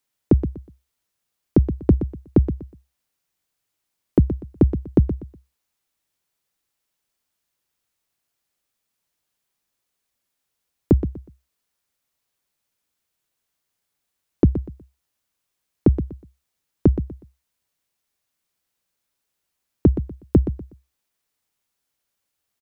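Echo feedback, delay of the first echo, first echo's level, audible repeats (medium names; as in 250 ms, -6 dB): 26%, 122 ms, -11.0 dB, 3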